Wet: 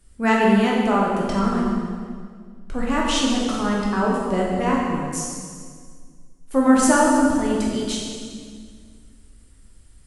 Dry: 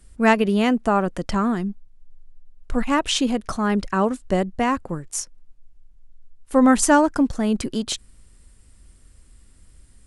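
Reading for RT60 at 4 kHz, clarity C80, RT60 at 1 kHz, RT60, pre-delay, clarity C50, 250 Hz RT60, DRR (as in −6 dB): 1.7 s, 1.5 dB, 1.8 s, 1.9 s, 7 ms, −0.5 dB, 2.4 s, −4.0 dB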